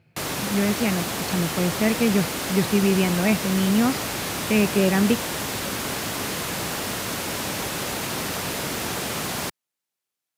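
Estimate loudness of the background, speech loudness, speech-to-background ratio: −27.0 LKFS, −23.0 LKFS, 4.0 dB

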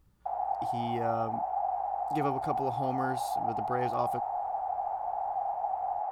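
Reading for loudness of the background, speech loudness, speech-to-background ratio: −33.0 LKFS, −36.0 LKFS, −3.0 dB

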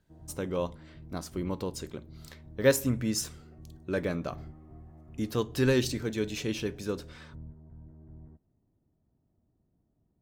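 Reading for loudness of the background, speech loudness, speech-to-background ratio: −50.5 LKFS, −31.5 LKFS, 19.0 dB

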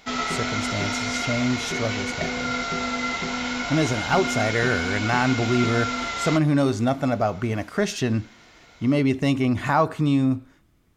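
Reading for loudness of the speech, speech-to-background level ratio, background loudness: −24.0 LKFS, 2.5 dB, −26.5 LKFS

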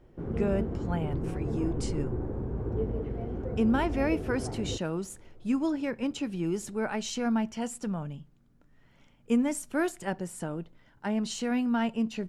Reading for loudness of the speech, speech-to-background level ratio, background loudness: −31.5 LKFS, 3.0 dB, −34.5 LKFS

